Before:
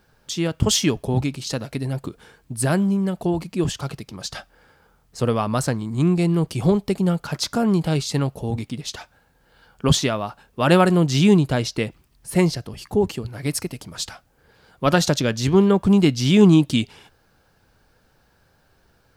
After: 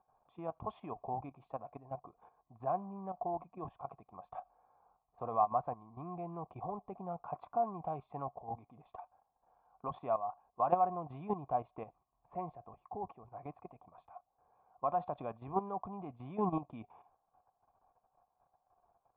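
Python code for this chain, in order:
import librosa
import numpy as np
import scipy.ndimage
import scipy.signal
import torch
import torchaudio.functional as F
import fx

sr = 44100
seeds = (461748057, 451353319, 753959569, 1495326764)

y = fx.level_steps(x, sr, step_db=12)
y = fx.formant_cascade(y, sr, vowel='a')
y = y * 10.0 ** (5.5 / 20.0)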